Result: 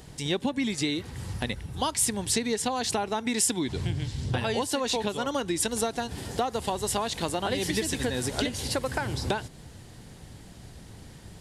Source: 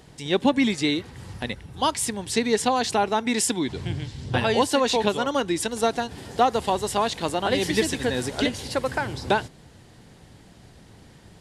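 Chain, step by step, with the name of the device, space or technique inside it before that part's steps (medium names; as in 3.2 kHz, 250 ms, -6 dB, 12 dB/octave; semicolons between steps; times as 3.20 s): ASMR close-microphone chain (bass shelf 120 Hz +7 dB; compression 6:1, threshold -25 dBFS, peak gain reduction 11.5 dB; treble shelf 6.2 kHz +8 dB)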